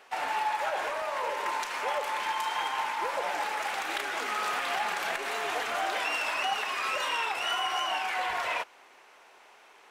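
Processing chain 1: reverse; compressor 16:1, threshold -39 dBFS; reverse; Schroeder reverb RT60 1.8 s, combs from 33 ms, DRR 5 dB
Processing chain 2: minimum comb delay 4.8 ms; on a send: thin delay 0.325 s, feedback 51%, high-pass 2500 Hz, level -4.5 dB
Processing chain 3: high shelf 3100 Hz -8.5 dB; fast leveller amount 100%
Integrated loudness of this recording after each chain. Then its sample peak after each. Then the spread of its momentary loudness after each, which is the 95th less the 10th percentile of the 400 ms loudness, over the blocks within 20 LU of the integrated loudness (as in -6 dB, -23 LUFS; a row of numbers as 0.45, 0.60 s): -40.5, -31.5, -26.5 LUFS; -28.0, -19.5, -14.5 dBFS; 4, 5, 1 LU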